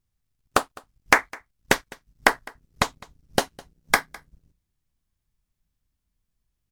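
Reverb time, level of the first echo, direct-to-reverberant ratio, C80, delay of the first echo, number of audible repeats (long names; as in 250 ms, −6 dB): no reverb audible, −23.0 dB, no reverb audible, no reverb audible, 207 ms, 1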